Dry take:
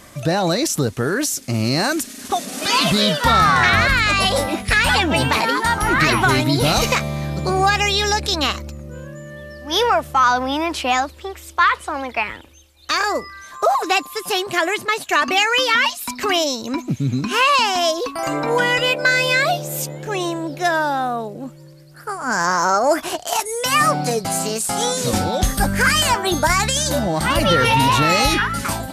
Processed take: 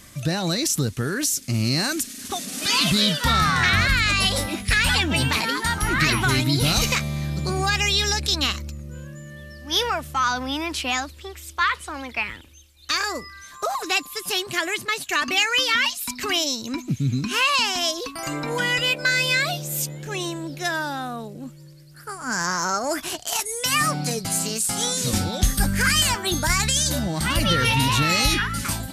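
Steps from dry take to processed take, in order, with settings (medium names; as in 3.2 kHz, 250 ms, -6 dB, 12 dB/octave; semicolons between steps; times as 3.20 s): peaking EQ 680 Hz -11 dB 2.3 oct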